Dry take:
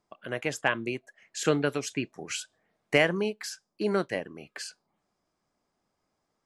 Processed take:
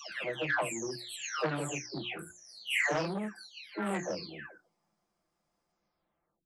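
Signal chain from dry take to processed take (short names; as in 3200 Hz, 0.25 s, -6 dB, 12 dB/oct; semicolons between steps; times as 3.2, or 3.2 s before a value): spectral delay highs early, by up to 0.738 s; notches 60/120/180/240/300/360 Hz; core saturation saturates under 1300 Hz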